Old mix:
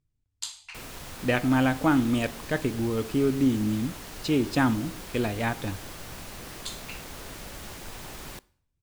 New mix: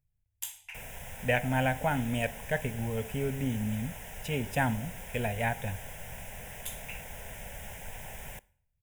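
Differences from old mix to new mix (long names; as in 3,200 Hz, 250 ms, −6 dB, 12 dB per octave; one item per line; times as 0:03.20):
speech: remove Chebyshev low-pass filter 8,500 Hz, order 3
master: add phaser with its sweep stopped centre 1,200 Hz, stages 6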